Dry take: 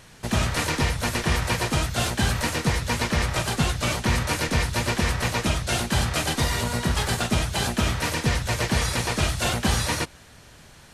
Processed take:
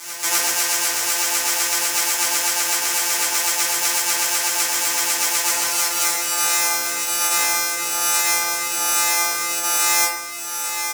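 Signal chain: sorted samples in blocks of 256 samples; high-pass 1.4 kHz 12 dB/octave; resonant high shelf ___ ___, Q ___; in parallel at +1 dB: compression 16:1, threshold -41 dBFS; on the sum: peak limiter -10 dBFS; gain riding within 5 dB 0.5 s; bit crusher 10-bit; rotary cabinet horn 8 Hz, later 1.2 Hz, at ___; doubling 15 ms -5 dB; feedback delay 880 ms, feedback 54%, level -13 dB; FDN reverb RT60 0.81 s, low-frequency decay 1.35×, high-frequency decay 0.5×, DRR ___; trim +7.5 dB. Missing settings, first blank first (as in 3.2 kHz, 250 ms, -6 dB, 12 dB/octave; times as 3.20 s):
4.8 kHz, +8 dB, 1.5, 5.37 s, -9.5 dB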